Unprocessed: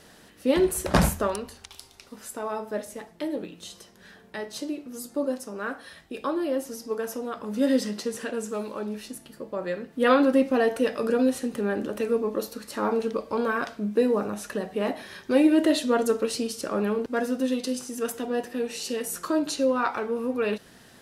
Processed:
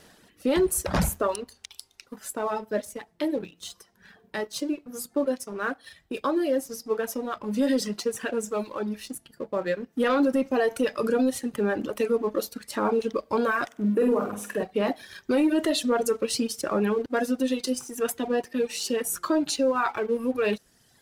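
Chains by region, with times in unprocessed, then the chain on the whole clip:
13.66–14.63 HPF 160 Hz 6 dB/oct + bell 4400 Hz -13.5 dB 0.84 oct + flutter echo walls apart 8.3 m, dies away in 0.69 s
whole clip: reverb removal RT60 1.4 s; sample leveller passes 1; limiter -16 dBFS

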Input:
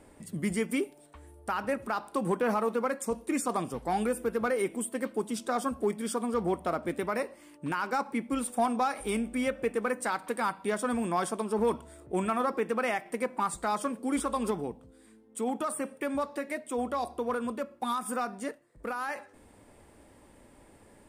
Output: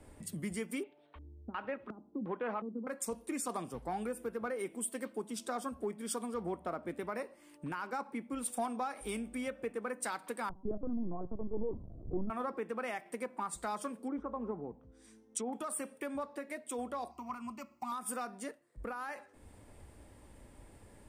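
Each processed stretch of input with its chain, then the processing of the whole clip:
0.83–2.87 tone controls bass -6 dB, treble -15 dB + LFO low-pass square 1.4 Hz 250–3500 Hz
10.49–12.3 Gaussian blur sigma 11 samples + low shelf 370 Hz +9 dB + LPC vocoder at 8 kHz pitch kept
14.07–15.53 bell 5900 Hz +13.5 dB 0.27 oct + treble ducked by the level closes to 1100 Hz, closed at -29 dBFS
17.11–17.92 high shelf 2900 Hz +8.5 dB + fixed phaser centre 2400 Hz, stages 8
whole clip: compressor 2.5:1, threshold -50 dBFS; three-band expander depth 70%; gain +6.5 dB

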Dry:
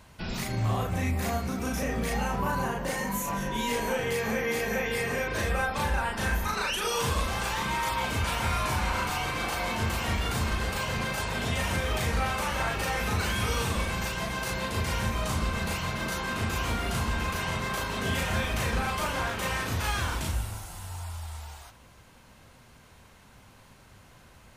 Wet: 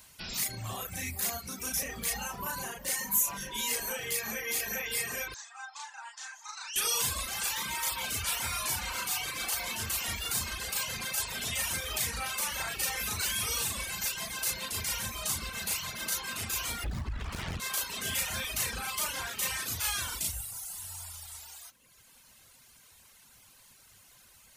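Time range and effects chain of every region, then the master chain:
5.34–6.76 Chebyshev band-pass 810–7200 Hz, order 4 + bell 2800 Hz -11.5 dB 2.7 oct
16.84–17.6 RIAA curve playback + compressor 5:1, threshold -18 dBFS + Doppler distortion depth 0.88 ms
whole clip: reverb removal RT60 1.1 s; pre-emphasis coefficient 0.9; gain +8.5 dB

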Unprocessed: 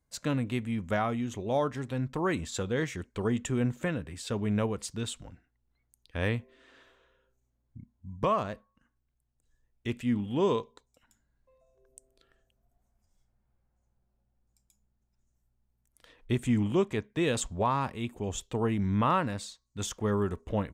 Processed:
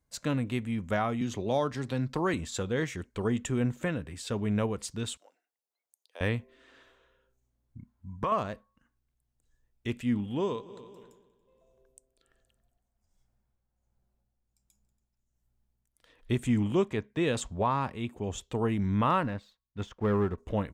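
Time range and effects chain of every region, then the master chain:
1.21–2.34 bell 4600 Hz +9 dB 0.62 oct + three-band squash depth 40%
5.17–6.21 HPF 530 Hz 24 dB/oct + bell 1700 Hz -12.5 dB 2 oct
7.78–8.32 bell 1300 Hz +9.5 dB 1.3 oct + compressor 3:1, threshold -28 dBFS
10.2–16.31 multi-head echo 94 ms, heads second and third, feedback 42%, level -20 dB + tremolo 1.3 Hz, depth 54%
16.89–18.51 HPF 40 Hz + high shelf 6000 Hz -7 dB
19.23–20.38 LPF 2600 Hz + sample leveller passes 1 + upward expander, over -44 dBFS
whole clip: dry

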